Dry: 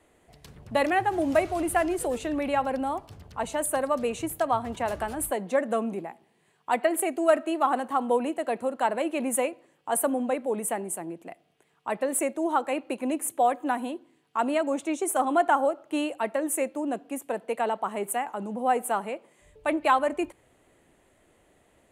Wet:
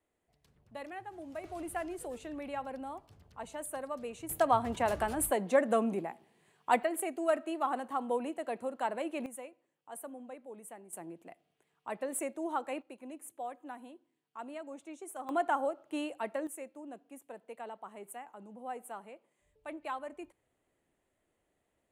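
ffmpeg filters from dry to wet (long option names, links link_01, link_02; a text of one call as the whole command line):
ffmpeg -i in.wav -af "asetnsamples=nb_out_samples=441:pad=0,asendcmd='1.44 volume volume -13dB;4.29 volume volume -1.5dB;6.83 volume volume -8.5dB;9.26 volume volume -19.5dB;10.93 volume volume -9.5dB;12.82 volume volume -18dB;15.29 volume volume -8.5dB;16.47 volume volume -17dB',volume=-20dB" out.wav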